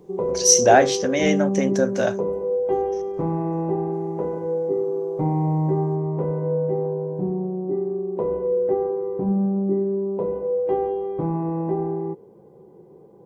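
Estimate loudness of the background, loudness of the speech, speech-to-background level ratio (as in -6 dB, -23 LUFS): -24.5 LUFS, -19.0 LUFS, 5.5 dB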